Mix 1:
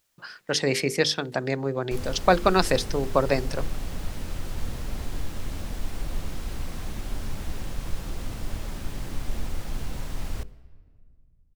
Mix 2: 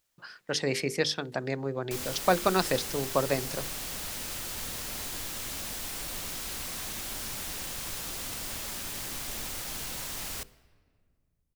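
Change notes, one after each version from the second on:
speech −5.0 dB
background: add spectral tilt +3.5 dB per octave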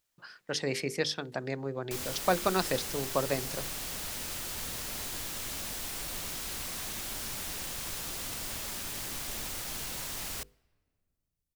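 speech −3.0 dB
background: send −10.5 dB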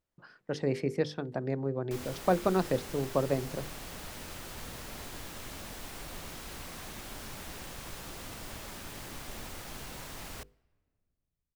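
speech: add tilt shelving filter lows +5 dB, about 810 Hz
master: add high-shelf EQ 2,700 Hz −10.5 dB

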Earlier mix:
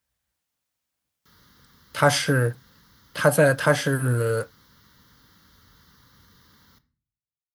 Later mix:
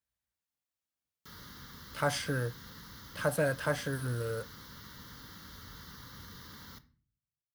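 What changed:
speech −12.0 dB
background +7.0 dB

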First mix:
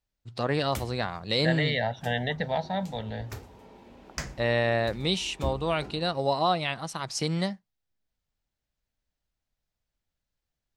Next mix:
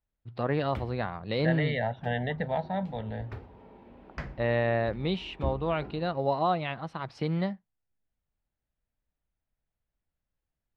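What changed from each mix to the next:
master: add high-frequency loss of the air 410 metres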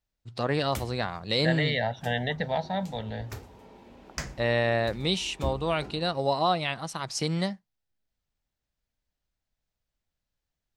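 master: remove high-frequency loss of the air 410 metres

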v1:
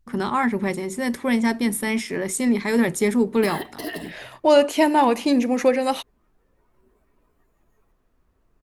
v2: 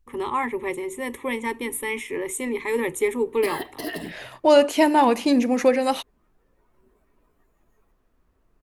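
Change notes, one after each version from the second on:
first voice: add phaser with its sweep stopped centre 1,000 Hz, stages 8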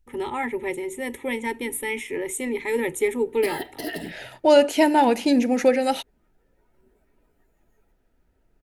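master: add Butterworth band-reject 1,100 Hz, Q 4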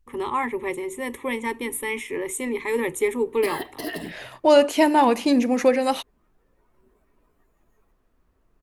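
master: remove Butterworth band-reject 1,100 Hz, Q 4

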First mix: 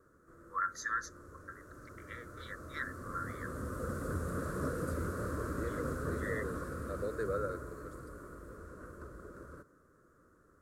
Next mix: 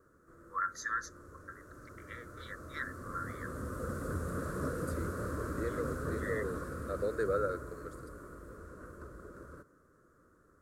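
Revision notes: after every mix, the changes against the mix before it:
second voice +4.0 dB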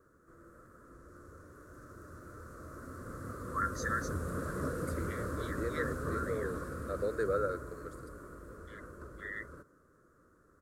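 first voice: entry +3.00 s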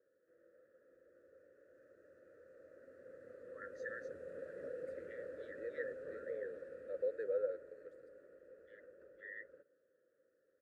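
master: add formant filter e

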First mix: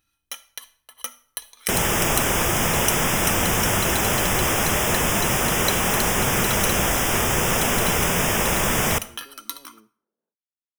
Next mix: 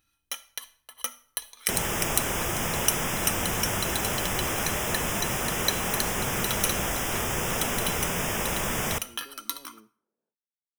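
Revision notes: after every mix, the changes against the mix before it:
second sound −7.5 dB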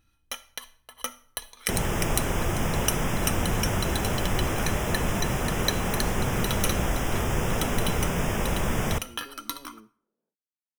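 first sound +3.5 dB
master: add spectral tilt −2 dB per octave

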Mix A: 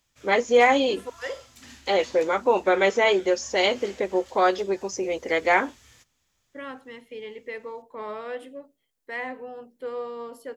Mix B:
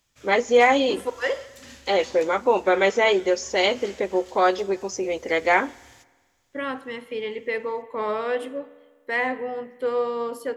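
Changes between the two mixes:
second voice +5.5 dB
reverb: on, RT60 1.5 s

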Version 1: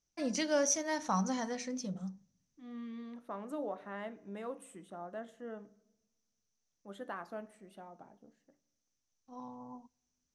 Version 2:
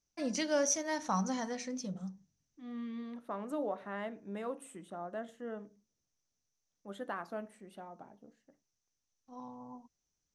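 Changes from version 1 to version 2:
second voice +4.5 dB
reverb: off

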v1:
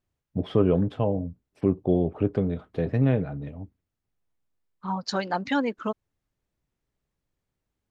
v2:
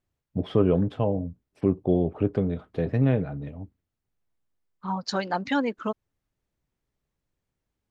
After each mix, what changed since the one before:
nothing changed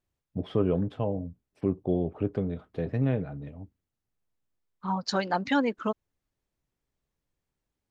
first voice −4.5 dB

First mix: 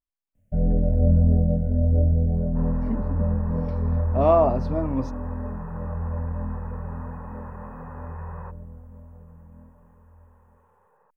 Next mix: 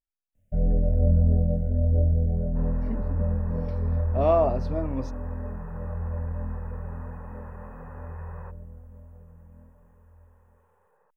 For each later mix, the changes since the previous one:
master: add octave-band graphic EQ 125/250/1,000 Hz −4/−5/−6 dB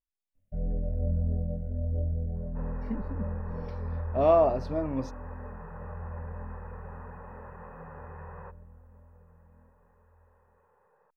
first sound −8.5 dB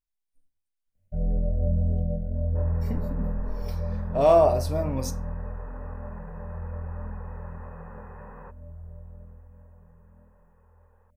speech: remove high-frequency loss of the air 250 metres
first sound: entry +0.60 s
reverb: on, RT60 0.40 s

